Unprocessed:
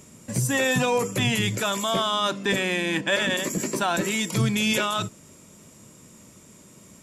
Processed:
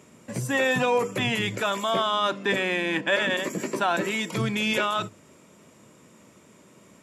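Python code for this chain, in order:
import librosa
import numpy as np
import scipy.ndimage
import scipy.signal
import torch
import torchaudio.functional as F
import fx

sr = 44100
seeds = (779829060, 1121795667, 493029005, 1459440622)

y = scipy.signal.sosfilt(scipy.signal.butter(2, 67.0, 'highpass', fs=sr, output='sos'), x)
y = fx.bass_treble(y, sr, bass_db=-7, treble_db=-11)
y = fx.hum_notches(y, sr, base_hz=50, count=2)
y = F.gain(torch.from_numpy(y), 1.0).numpy()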